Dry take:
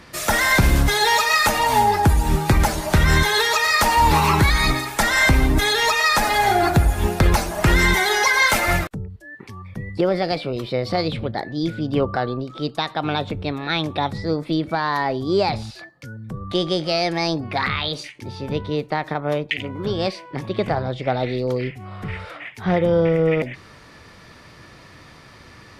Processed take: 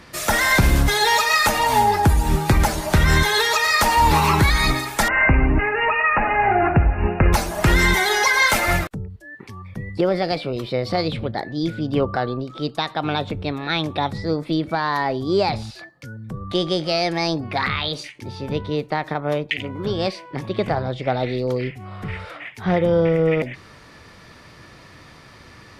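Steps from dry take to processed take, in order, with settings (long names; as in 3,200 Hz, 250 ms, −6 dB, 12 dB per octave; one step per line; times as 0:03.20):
0:05.08–0:07.33: linear-phase brick-wall low-pass 2,900 Hz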